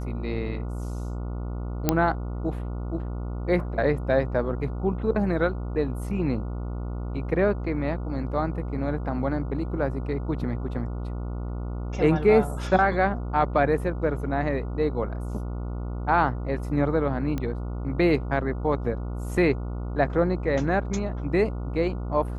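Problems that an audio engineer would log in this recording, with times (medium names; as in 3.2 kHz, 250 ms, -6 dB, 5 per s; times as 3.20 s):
buzz 60 Hz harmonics 24 -31 dBFS
1.89 s: pop -5 dBFS
17.38 s: pop -17 dBFS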